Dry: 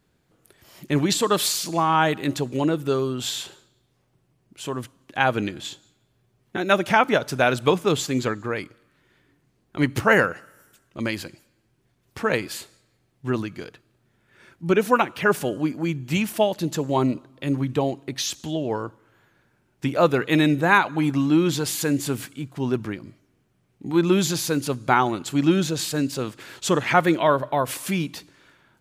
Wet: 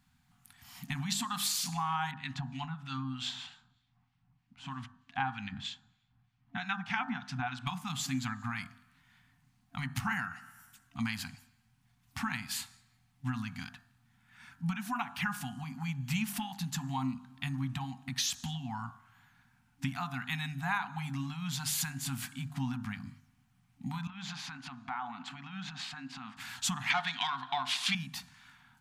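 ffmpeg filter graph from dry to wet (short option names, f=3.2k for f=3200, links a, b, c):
-filter_complex "[0:a]asettb=1/sr,asplit=3[a][b][c];[a]atrim=end=2.114[d];[b]atrim=start=2.11:end=7.67,asetpts=PTS-STARTPTS,afade=t=in:d=0.004:c=qsin,afade=t=out:st=5.556:d=0.004:c=qsin,lowpass=3.9k,acrossover=split=1500[e][f];[e]aeval=exprs='val(0)*(1-0.7/2+0.7/2*cos(2*PI*3.2*n/s))':c=same[g];[f]aeval=exprs='val(0)*(1-0.7/2-0.7/2*cos(2*PI*3.2*n/s))':c=same[h];[g][h]amix=inputs=2:normalize=0[i];[c]atrim=start=7.666[j];[d][i]acrossfade=d=0.004:c1=hsin:c2=qsin[k];[k][j]acrossfade=d=0.004:c1=qsin:c2=hsin,asettb=1/sr,asplit=3[l][m][n];[l]atrim=end=24.074[o];[m]atrim=start=24.07:end=26.37,asetpts=PTS-STARTPTS,afade=t=in:d=0.004:c=qsin,afade=t=out:st=2.296:d=0.004:c=qsin,highpass=300,lowpass=2.5k,acompressor=threshold=-32dB:ratio=4:attack=3.2:release=140:knee=1:detection=peak[p];[n]atrim=start=26.366[q];[o][p]acrossfade=d=0.004:c1=hsin:c2=qsin[r];[r][q]acrossfade=d=0.004:c1=qsin:c2=hsin,asettb=1/sr,asplit=3[s][t][u];[s]atrim=end=26.904[v];[t]atrim=start=26.9:end=27.95,asetpts=PTS-STARTPTS,afade=t=in:d=0.004:c=qsin,afade=t=out:st=1.046:d=0.004:c=qsin,equalizer=f=3.6k:w=1.1:g=14,acontrast=86,highpass=250,lowpass=5.8k[w];[u]atrim=start=27.946[x];[v][w]acrossfade=d=0.004:c1=hsin:c2=qsin[y];[y][x]acrossfade=d=0.004:c1=qsin:c2=hsin,acompressor=threshold=-27dB:ratio=6,afftfilt=real='re*(1-between(b*sr/4096,270,690))':imag='im*(1-between(b*sr/4096,270,690))':win_size=4096:overlap=0.75,bandreject=f=49.81:t=h:w=4,bandreject=f=99.62:t=h:w=4,bandreject=f=149.43:t=h:w=4,bandreject=f=199.24:t=h:w=4,bandreject=f=249.05:t=h:w=4,bandreject=f=298.86:t=h:w=4,bandreject=f=348.67:t=h:w=4,bandreject=f=398.48:t=h:w=4,bandreject=f=448.29:t=h:w=4,bandreject=f=498.1:t=h:w=4,bandreject=f=547.91:t=h:w=4,bandreject=f=597.72:t=h:w=4,bandreject=f=647.53:t=h:w=4,bandreject=f=697.34:t=h:w=4,bandreject=f=747.15:t=h:w=4,bandreject=f=796.96:t=h:w=4,bandreject=f=846.77:t=h:w=4,bandreject=f=896.58:t=h:w=4,bandreject=f=946.39:t=h:w=4,bandreject=f=996.2:t=h:w=4,bandreject=f=1.04601k:t=h:w=4,bandreject=f=1.09582k:t=h:w=4,bandreject=f=1.14563k:t=h:w=4,bandreject=f=1.19544k:t=h:w=4,bandreject=f=1.24525k:t=h:w=4,bandreject=f=1.29506k:t=h:w=4,bandreject=f=1.34487k:t=h:w=4,bandreject=f=1.39468k:t=h:w=4,bandreject=f=1.44449k:t=h:w=4,bandreject=f=1.4943k:t=h:w=4,bandreject=f=1.54411k:t=h:w=4,bandreject=f=1.59392k:t=h:w=4,bandreject=f=1.64373k:t=h:w=4,bandreject=f=1.69354k:t=h:w=4,bandreject=f=1.74335k:t=h:w=4,bandreject=f=1.79316k:t=h:w=4,bandreject=f=1.84297k:t=h:w=4,volume=-1.5dB"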